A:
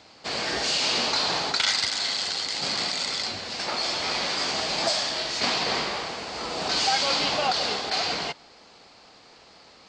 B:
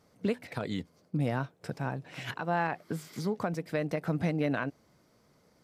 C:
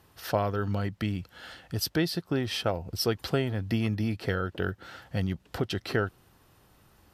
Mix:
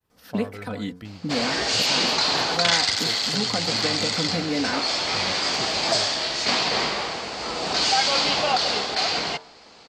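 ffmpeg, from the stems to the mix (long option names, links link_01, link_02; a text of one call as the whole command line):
ffmpeg -i stem1.wav -i stem2.wav -i stem3.wav -filter_complex "[0:a]adelay=1050,volume=3dB[link_01];[1:a]aecho=1:1:4:0.85,adelay=100,volume=1.5dB[link_02];[2:a]agate=range=-33dB:threshold=-55dB:ratio=3:detection=peak,volume=-9dB[link_03];[link_01][link_02][link_03]amix=inputs=3:normalize=0,bandreject=frequency=89.98:width_type=h:width=4,bandreject=frequency=179.96:width_type=h:width=4,bandreject=frequency=269.94:width_type=h:width=4,bandreject=frequency=359.92:width_type=h:width=4,bandreject=frequency=449.9:width_type=h:width=4,bandreject=frequency=539.88:width_type=h:width=4,bandreject=frequency=629.86:width_type=h:width=4,bandreject=frequency=719.84:width_type=h:width=4,bandreject=frequency=809.82:width_type=h:width=4,bandreject=frequency=899.8:width_type=h:width=4,bandreject=frequency=989.78:width_type=h:width=4,bandreject=frequency=1079.76:width_type=h:width=4,bandreject=frequency=1169.74:width_type=h:width=4,bandreject=frequency=1259.72:width_type=h:width=4,bandreject=frequency=1349.7:width_type=h:width=4,bandreject=frequency=1439.68:width_type=h:width=4,bandreject=frequency=1529.66:width_type=h:width=4,bandreject=frequency=1619.64:width_type=h:width=4,bandreject=frequency=1709.62:width_type=h:width=4" out.wav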